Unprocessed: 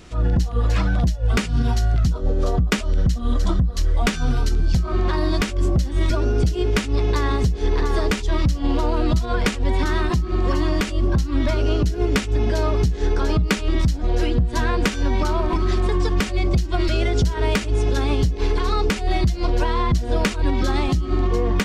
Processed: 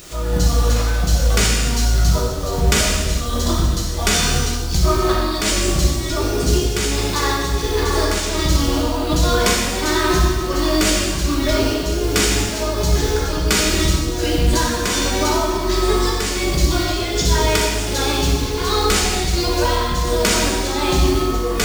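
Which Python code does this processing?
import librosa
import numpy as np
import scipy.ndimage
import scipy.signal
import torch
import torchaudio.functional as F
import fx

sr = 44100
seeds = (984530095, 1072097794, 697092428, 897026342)

p1 = fx.bass_treble(x, sr, bass_db=-6, treble_db=11)
p2 = fx.over_compress(p1, sr, threshold_db=-28.0, ratio=-0.5)
p3 = p1 + (p2 * librosa.db_to_amplitude(-0.5))
p4 = fx.quant_dither(p3, sr, seeds[0], bits=6, dither='none')
p5 = fx.volume_shaper(p4, sr, bpm=82, per_beat=1, depth_db=-7, release_ms=324.0, shape='slow start')
p6 = fx.rev_gated(p5, sr, seeds[1], gate_ms=490, shape='falling', drr_db=-4.5)
y = p6 * librosa.db_to_amplitude(-1.5)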